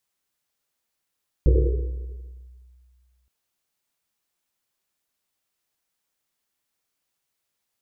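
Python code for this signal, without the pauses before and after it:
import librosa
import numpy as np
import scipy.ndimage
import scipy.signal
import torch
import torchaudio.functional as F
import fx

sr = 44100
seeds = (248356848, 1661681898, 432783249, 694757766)

y = fx.risset_drum(sr, seeds[0], length_s=1.82, hz=62.0, decay_s=2.12, noise_hz=410.0, noise_width_hz=160.0, noise_pct=30)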